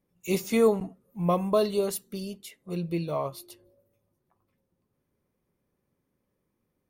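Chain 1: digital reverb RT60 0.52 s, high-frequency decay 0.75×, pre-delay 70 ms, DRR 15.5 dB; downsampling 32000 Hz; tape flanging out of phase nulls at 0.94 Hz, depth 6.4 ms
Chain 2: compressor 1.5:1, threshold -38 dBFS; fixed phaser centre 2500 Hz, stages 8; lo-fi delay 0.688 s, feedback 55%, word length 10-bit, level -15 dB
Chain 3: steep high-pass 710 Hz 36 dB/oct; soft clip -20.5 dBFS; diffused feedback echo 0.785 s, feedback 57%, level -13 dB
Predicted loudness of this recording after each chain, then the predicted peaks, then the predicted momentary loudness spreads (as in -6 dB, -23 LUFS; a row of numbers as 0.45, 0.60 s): -30.5, -39.0, -37.5 LUFS; -12.5, -23.5, -21.5 dBFS; 18, 20, 21 LU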